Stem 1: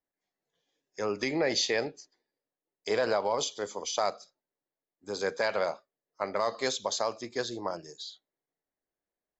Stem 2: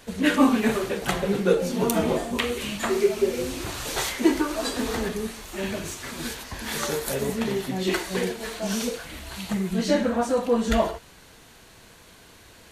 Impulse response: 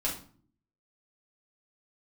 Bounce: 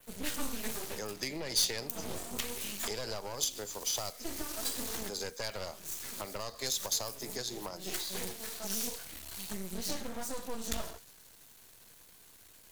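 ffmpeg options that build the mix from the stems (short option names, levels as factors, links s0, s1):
-filter_complex "[0:a]aeval=exprs='(tanh(14.1*val(0)+0.6)-tanh(0.6))/14.1':c=same,volume=0.891,asplit=2[s0][s1];[1:a]adynamicequalizer=threshold=0.00562:dfrequency=5400:dqfactor=1.3:tfrequency=5400:tqfactor=1.3:attack=5:release=100:ratio=0.375:range=2:mode=boostabove:tftype=bell,aeval=exprs='max(val(0),0)':c=same,volume=0.355[s2];[s1]apad=whole_len=560548[s3];[s2][s3]sidechaincompress=threshold=0.00891:ratio=8:attack=6.4:release=282[s4];[s0][s4]amix=inputs=2:normalize=0,aemphasis=mode=production:type=50fm,acrossover=split=120|3000[s5][s6][s7];[s6]acompressor=threshold=0.0126:ratio=6[s8];[s5][s8][s7]amix=inputs=3:normalize=0"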